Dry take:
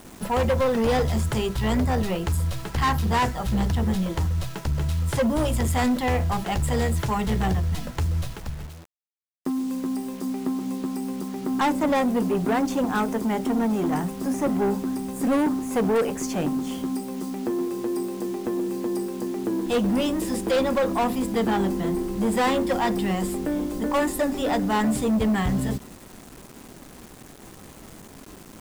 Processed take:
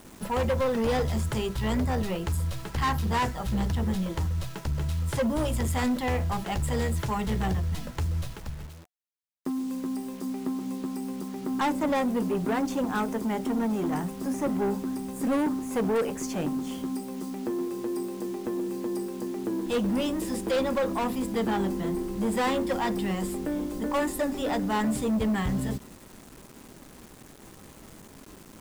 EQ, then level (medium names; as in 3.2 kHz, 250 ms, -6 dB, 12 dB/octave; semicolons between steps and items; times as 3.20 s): band-stop 720 Hz, Q 20; -4.0 dB